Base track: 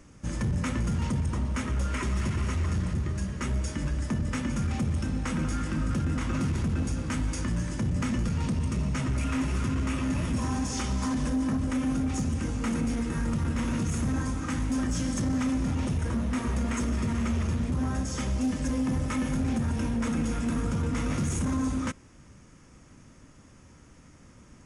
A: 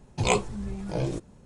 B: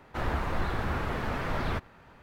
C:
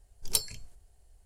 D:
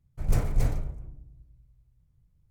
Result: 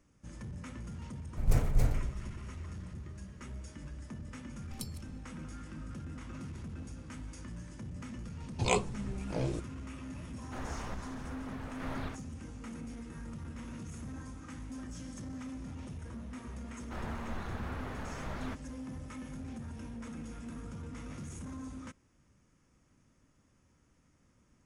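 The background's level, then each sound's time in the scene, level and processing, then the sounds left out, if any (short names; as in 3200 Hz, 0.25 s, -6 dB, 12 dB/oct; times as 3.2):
base track -15.5 dB
1.19 add D -2.5 dB
4.46 add C -17.5 dB + reverse delay 0.144 s, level -14 dB
8.41 add A -5.5 dB
10.37 add B -9 dB + random-step tremolo
16.76 add B -10.5 dB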